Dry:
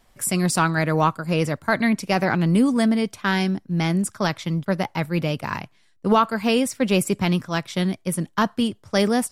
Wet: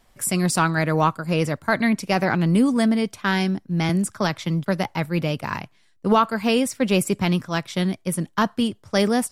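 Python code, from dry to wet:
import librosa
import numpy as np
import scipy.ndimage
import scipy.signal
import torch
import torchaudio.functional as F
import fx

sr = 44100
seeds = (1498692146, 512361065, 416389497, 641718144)

y = fx.band_squash(x, sr, depth_pct=40, at=(3.89, 4.95))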